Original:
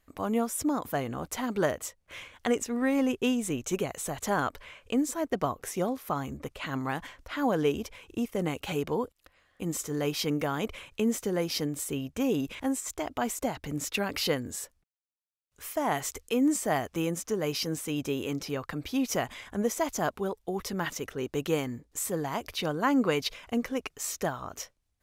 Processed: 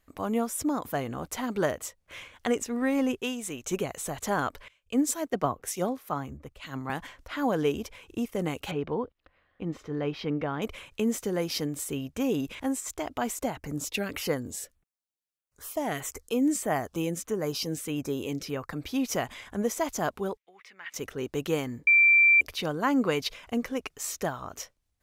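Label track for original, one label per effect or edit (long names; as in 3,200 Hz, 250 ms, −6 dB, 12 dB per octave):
3.200000	3.650000	low-shelf EQ 490 Hz −9.5 dB
4.680000	6.900000	multiband upward and downward expander depth 100%
8.710000	10.620000	high-frequency loss of the air 310 metres
13.500000	18.730000	auto-filter notch saw down 1.6 Hz 720–5,800 Hz
20.370000	20.940000	resonant band-pass 2,200 Hz, Q 3.7
21.870000	22.410000	beep over 2,350 Hz −15.5 dBFS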